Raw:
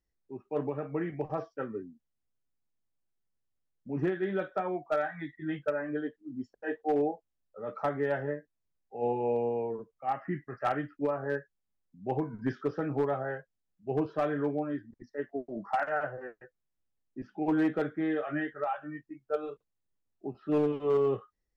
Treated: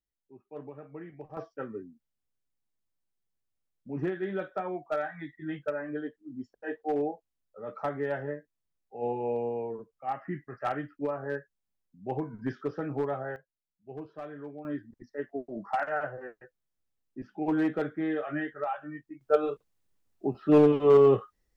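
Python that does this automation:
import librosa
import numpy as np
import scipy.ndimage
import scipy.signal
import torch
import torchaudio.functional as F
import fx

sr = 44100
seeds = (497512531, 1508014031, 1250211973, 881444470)

y = fx.gain(x, sr, db=fx.steps((0.0, -10.5), (1.37, -1.5), (13.36, -11.5), (14.65, 0.0), (19.21, 8.0)))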